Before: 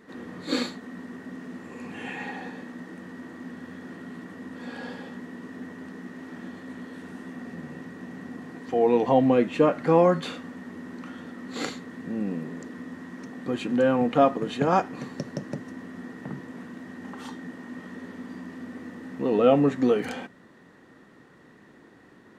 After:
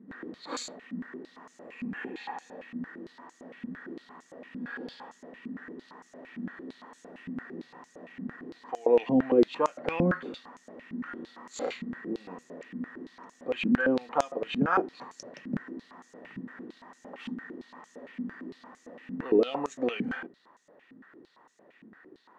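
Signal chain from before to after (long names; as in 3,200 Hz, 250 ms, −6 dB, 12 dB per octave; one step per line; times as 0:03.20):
0:11.05–0:12.42: double-tracking delay 33 ms −4 dB
band-pass on a step sequencer 8.8 Hz 220–6,700 Hz
level +7.5 dB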